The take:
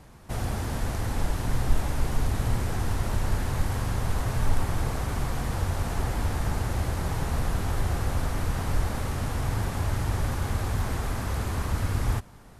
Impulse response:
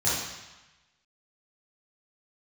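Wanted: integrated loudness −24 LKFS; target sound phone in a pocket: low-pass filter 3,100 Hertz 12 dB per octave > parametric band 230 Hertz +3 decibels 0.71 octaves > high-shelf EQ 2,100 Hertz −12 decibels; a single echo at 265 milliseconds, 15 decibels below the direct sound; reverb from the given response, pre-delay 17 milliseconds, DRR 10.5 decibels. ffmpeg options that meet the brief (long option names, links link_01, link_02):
-filter_complex "[0:a]aecho=1:1:265:0.178,asplit=2[link_01][link_02];[1:a]atrim=start_sample=2205,adelay=17[link_03];[link_02][link_03]afir=irnorm=-1:irlink=0,volume=-22.5dB[link_04];[link_01][link_04]amix=inputs=2:normalize=0,lowpass=3100,equalizer=frequency=230:width_type=o:width=0.71:gain=3,highshelf=frequency=2100:gain=-12,volume=4dB"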